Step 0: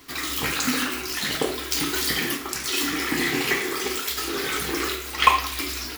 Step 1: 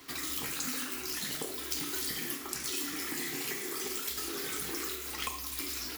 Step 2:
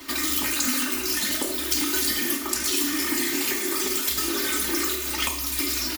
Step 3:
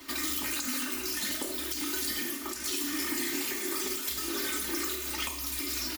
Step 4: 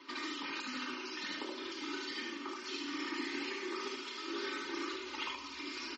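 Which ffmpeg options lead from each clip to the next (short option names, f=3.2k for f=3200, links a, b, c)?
-filter_complex "[0:a]acrossover=split=350|5800[a][b][c];[a]acompressor=threshold=-41dB:ratio=4[d];[b]acompressor=threshold=-39dB:ratio=4[e];[c]acompressor=threshold=-31dB:ratio=4[f];[d][e][f]amix=inputs=3:normalize=0,lowshelf=f=62:g=-11.5,volume=-3dB"
-af "aecho=1:1:3.3:0.9,volume=8.5dB"
-af "alimiter=limit=-14dB:level=0:latency=1:release=172,volume=-6.5dB"
-af "highpass=290,equalizer=f=410:t=q:w=4:g=3,equalizer=f=660:t=q:w=4:g=-10,equalizer=f=1k:t=q:w=4:g=5,equalizer=f=1.8k:t=q:w=4:g=-3,equalizer=f=3.7k:t=q:w=4:g=-4,lowpass=f=4.5k:w=0.5412,lowpass=f=4.5k:w=1.3066,aecho=1:1:74:0.668,volume=-4dB" -ar 44100 -c:a libmp3lame -b:a 32k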